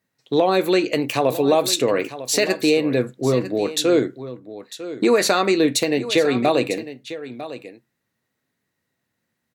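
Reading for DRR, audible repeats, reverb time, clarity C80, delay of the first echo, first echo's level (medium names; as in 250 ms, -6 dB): no reverb, 1, no reverb, no reverb, 950 ms, -14.0 dB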